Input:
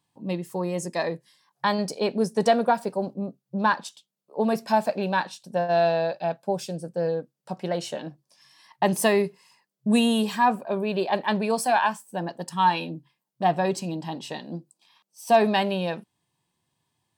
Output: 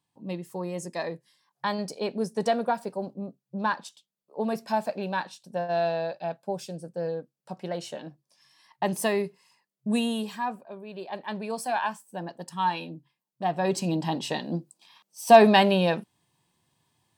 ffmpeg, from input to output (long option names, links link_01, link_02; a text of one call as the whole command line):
ffmpeg -i in.wav -af "volume=15.5dB,afade=type=out:start_time=9.91:duration=0.89:silence=0.281838,afade=type=in:start_time=10.8:duration=1.09:silence=0.298538,afade=type=in:start_time=13.54:duration=0.41:silence=0.316228" out.wav